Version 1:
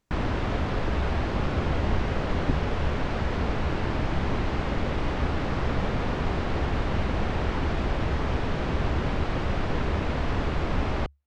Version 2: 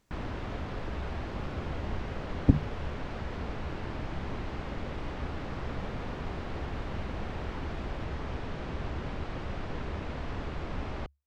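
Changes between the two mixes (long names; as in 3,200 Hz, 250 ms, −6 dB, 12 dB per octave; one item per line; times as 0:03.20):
speech +6.0 dB
background −9.5 dB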